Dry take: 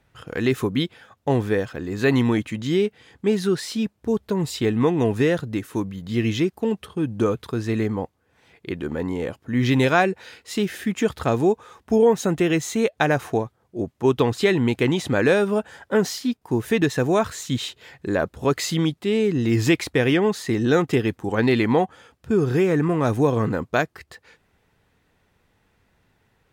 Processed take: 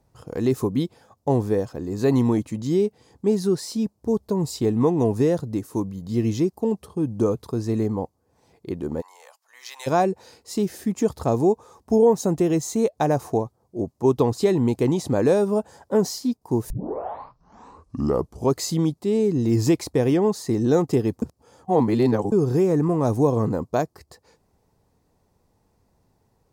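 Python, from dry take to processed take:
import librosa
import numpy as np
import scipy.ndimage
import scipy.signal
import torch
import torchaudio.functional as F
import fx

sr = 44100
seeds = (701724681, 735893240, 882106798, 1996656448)

y = fx.bessel_highpass(x, sr, hz=1300.0, order=6, at=(9.0, 9.86), fade=0.02)
y = fx.edit(y, sr, fx.tape_start(start_s=16.7, length_s=1.86),
    fx.reverse_span(start_s=21.22, length_s=1.1), tone=tone)
y = fx.band_shelf(y, sr, hz=2200.0, db=-13.5, octaves=1.7)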